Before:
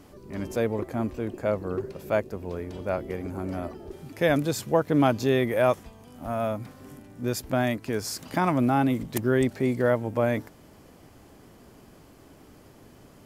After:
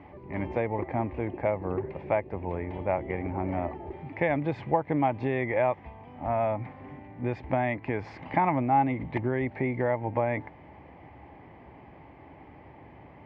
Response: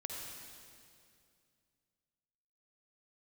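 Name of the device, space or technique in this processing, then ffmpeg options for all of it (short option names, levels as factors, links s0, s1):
bass amplifier: -af "acompressor=threshold=0.0562:ratio=6,highpass=66,equalizer=f=68:t=q:w=4:g=7,equalizer=f=220:t=q:w=4:g=-6,equalizer=f=430:t=q:w=4:g=-4,equalizer=f=850:t=q:w=4:g=10,equalizer=f=1400:t=q:w=4:g=-10,equalizer=f=2100:t=q:w=4:g=9,lowpass=f=2400:w=0.5412,lowpass=f=2400:w=1.3066,volume=1.33"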